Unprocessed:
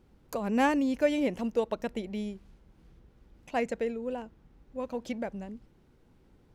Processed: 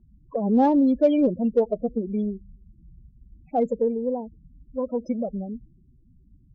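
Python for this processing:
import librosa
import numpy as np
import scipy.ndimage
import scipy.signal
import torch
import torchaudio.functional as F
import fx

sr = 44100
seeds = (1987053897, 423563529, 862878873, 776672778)

p1 = fx.spec_topn(x, sr, count=8)
p2 = np.clip(10.0 ** (23.0 / 20.0) * p1, -1.0, 1.0) / 10.0 ** (23.0 / 20.0)
p3 = p1 + (p2 * librosa.db_to_amplitude(-4.0))
p4 = fx.env_phaser(p3, sr, low_hz=400.0, high_hz=1900.0, full_db=-31.0)
p5 = fx.cheby_harmonics(p4, sr, harmonics=(6,), levels_db=(-41,), full_scale_db=-13.5)
y = p5 * librosa.db_to_amplitude(5.0)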